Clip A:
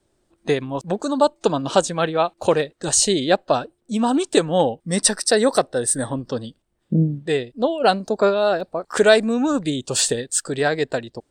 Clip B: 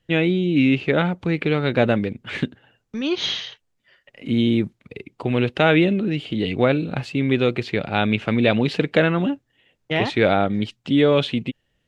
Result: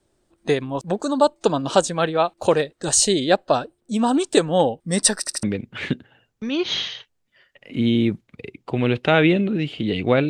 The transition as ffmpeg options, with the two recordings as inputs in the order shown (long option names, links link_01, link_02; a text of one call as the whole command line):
ffmpeg -i cue0.wav -i cue1.wav -filter_complex "[0:a]apad=whole_dur=10.29,atrim=end=10.29,asplit=3[link_01][link_02][link_03];[link_01]atrim=end=5.272[link_04];[link_02]atrim=start=5.188:end=5.272[link_05];[link_03]atrim=start=5.188:end=5.272[link_06];[1:a]atrim=start=1.948:end=6.81[link_07];[link_04][link_05]acrossfade=duration=0.004:curve1=hsin:curve2=hsin[link_08];[link_08][link_06]acrossfade=duration=0.004:curve1=hsin:curve2=hsin[link_09];[link_09][link_07]acrossfade=duration=0.004:curve1=hsin:curve2=hsin" out.wav